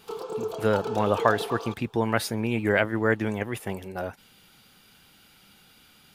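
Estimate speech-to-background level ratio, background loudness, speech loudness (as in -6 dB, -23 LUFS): 7.5 dB, -34.0 LUFS, -26.5 LUFS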